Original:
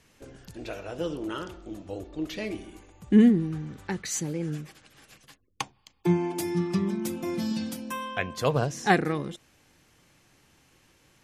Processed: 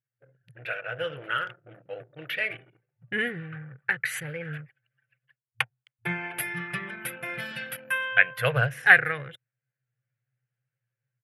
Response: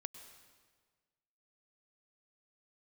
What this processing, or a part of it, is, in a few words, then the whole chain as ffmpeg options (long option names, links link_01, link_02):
voice memo with heavy noise removal: -af "anlmdn=0.251,dynaudnorm=framelen=370:gausssize=3:maxgain=7.5dB,afftfilt=real='re*between(b*sr/4096,110,12000)':imag='im*between(b*sr/4096,110,12000)':win_size=4096:overlap=0.75,firequalizer=gain_entry='entry(120,0);entry(200,-27);entry(330,-25);entry(500,-6);entry(1000,-13);entry(1500,9);entry(2900,1);entry(4200,-14);entry(6500,-25);entry(11000,3)':delay=0.05:min_phase=1"